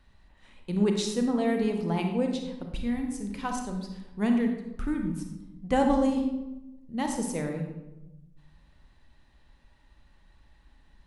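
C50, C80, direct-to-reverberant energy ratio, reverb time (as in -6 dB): 4.5 dB, 7.5 dB, 3.0 dB, 1.0 s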